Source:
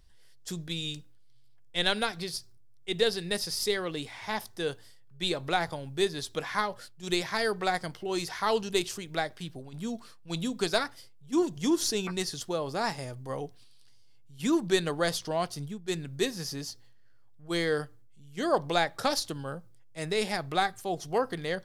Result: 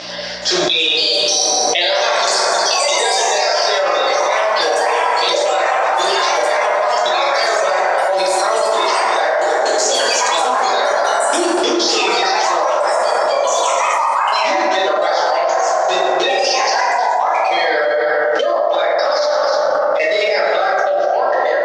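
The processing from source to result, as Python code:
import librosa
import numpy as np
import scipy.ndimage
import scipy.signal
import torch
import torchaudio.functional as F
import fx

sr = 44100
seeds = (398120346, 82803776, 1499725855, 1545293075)

p1 = fx.spec_quant(x, sr, step_db=30)
p2 = scipy.signal.sosfilt(scipy.signal.ellip(4, 1.0, 70, 5500.0, 'lowpass', fs=sr, output='sos'), p1)
p3 = fx.tilt_eq(p2, sr, slope=2.5)
p4 = fx.level_steps(p3, sr, step_db=18)
p5 = fx.add_hum(p4, sr, base_hz=60, snr_db=24)
p6 = fx.highpass_res(p5, sr, hz=590.0, q=6.9)
p7 = p6 + fx.echo_single(p6, sr, ms=313, db=-12.0, dry=0)
p8 = fx.echo_pitch(p7, sr, ms=421, semitones=4, count=2, db_per_echo=-3.0)
p9 = fx.rev_plate(p8, sr, seeds[0], rt60_s=2.1, hf_ratio=0.3, predelay_ms=0, drr_db=-7.5)
y = fx.env_flatten(p9, sr, amount_pct=100)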